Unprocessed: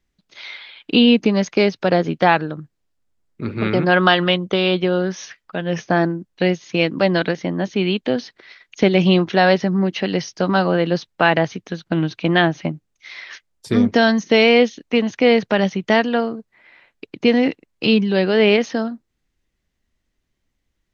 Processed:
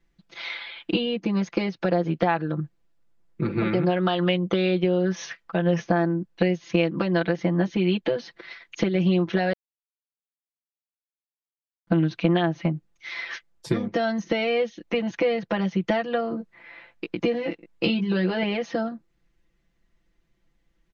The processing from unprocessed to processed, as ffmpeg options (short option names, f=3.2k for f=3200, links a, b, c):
-filter_complex "[0:a]asettb=1/sr,asplit=3[a][b][c];[a]atrim=end=16.294[d];[b]atrim=start=16.29:end=18.43,asetpts=PTS-STARTPTS,afade=t=in:d=0.004:c=qsin,afade=t=out:st=2.136:d=0.004:c=qsin,asplit=2[e][f];[f]adelay=17,volume=-5dB[g];[e][g]amix=inputs=2:normalize=0,atrim=end_sample=94374[h];[c]atrim=start=18.426[i];[d][h]acrossfade=d=0.004:c1=hsin:c2=qsin[j];[j][i]acrossfade=d=0.004:c1=qsin:c2=hsin,asplit=3[k][l][m];[k]atrim=end=9.53,asetpts=PTS-STARTPTS,afade=t=out:st=9.526:d=0.004:c=hsin[n];[l]atrim=start=9.53:end=11.87,asetpts=PTS-STARTPTS,volume=0[o];[m]atrim=start=11.87,asetpts=PTS-STARTPTS,afade=t=in:d=0.004:c=hsin[p];[n][o][p]concat=n=3:v=0:a=1,highshelf=f=4.1k:g=-10.5,acompressor=threshold=-24dB:ratio=10,aecho=1:1:5.9:0.99,volume=1.5dB"